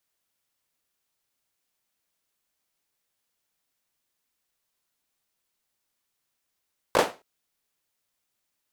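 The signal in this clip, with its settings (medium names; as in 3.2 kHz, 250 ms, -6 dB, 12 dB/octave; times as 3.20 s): hand clap length 0.27 s, bursts 3, apart 18 ms, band 530 Hz, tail 0.28 s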